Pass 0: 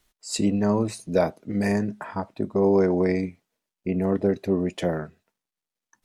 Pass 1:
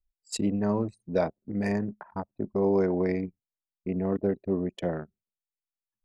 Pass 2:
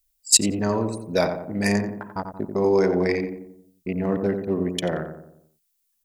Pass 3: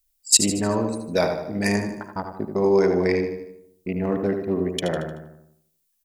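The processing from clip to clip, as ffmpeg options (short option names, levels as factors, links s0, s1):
-af "anlmdn=39.8,volume=0.596"
-filter_complex "[0:a]asplit=2[s0][s1];[s1]adelay=89,lowpass=f=1300:p=1,volume=0.501,asplit=2[s2][s3];[s3]adelay=89,lowpass=f=1300:p=1,volume=0.52,asplit=2[s4][s5];[s5]adelay=89,lowpass=f=1300:p=1,volume=0.52,asplit=2[s6][s7];[s7]adelay=89,lowpass=f=1300:p=1,volume=0.52,asplit=2[s8][s9];[s9]adelay=89,lowpass=f=1300:p=1,volume=0.52,asplit=2[s10][s11];[s11]adelay=89,lowpass=f=1300:p=1,volume=0.52[s12];[s2][s4][s6][s8][s10][s12]amix=inputs=6:normalize=0[s13];[s0][s13]amix=inputs=2:normalize=0,crystalizer=i=8.5:c=0,volume=1.26"
-af "aecho=1:1:76|152|228|304|380:0.299|0.149|0.0746|0.0373|0.0187"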